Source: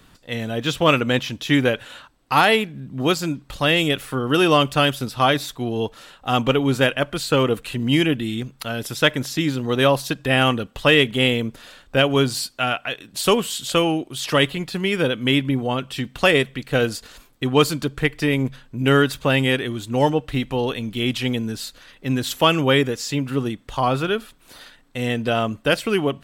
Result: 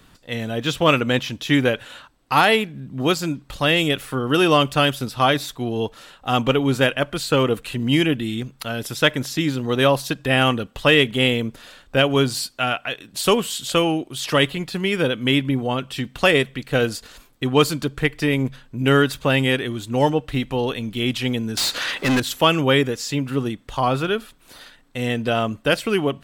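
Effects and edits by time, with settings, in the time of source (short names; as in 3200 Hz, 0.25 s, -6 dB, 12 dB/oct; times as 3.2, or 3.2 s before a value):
21.57–22.2 overdrive pedal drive 31 dB, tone 5500 Hz, clips at -12 dBFS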